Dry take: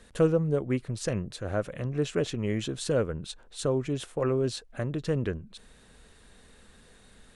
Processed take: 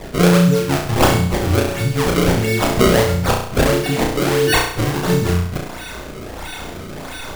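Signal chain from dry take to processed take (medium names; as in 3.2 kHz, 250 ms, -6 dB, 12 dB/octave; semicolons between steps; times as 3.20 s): partials quantised in pitch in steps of 4 st; treble shelf 4.3 kHz +10.5 dB; in parallel at +2.5 dB: compression, threshold -33 dBFS, peak gain reduction 17.5 dB; on the sum: bass shelf 220 Hz +9 dB; decimation with a swept rate 29×, swing 160% 1.5 Hz; on a send: flutter echo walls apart 5.8 m, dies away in 0.62 s; on the sum: trim +2.5 dB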